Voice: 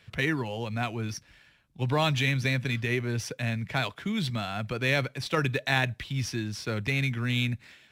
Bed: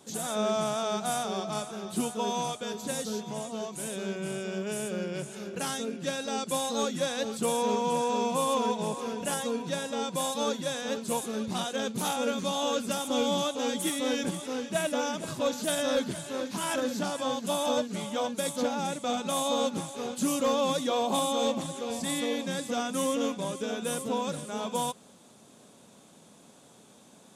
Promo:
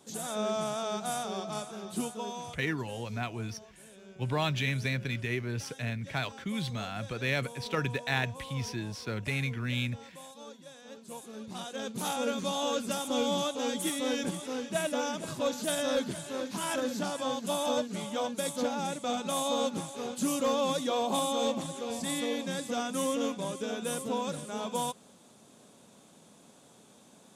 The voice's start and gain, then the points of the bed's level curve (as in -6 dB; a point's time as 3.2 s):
2.40 s, -4.5 dB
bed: 2.02 s -3.5 dB
2.91 s -18 dB
10.73 s -18 dB
12.17 s -2 dB